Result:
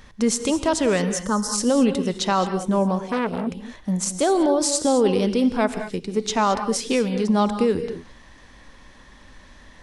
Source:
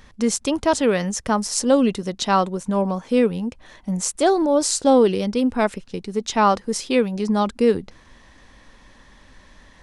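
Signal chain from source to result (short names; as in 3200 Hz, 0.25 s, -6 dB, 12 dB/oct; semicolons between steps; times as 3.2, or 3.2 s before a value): limiter -12 dBFS, peak gain reduction 8 dB; 1.12–1.54 fixed phaser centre 480 Hz, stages 8; non-linear reverb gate 0.24 s rising, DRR 9 dB; 3.06–3.47 core saturation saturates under 1100 Hz; gain +1 dB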